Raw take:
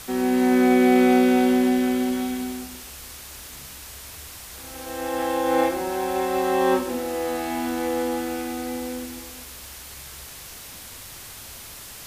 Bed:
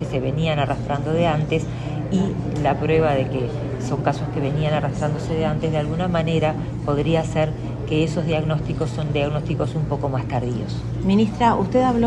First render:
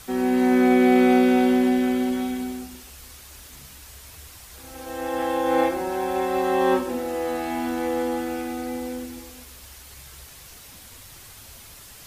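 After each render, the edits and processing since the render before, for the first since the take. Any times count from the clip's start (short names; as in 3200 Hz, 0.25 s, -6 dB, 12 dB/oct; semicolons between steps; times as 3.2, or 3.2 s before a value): denoiser 6 dB, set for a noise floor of -41 dBFS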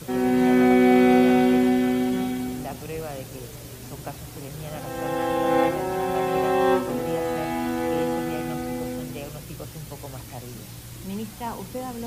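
add bed -15.5 dB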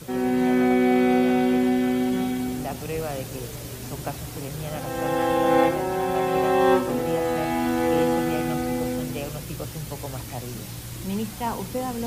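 vocal rider within 4 dB 2 s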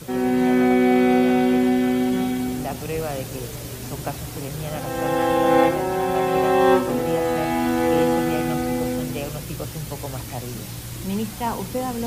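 gain +2.5 dB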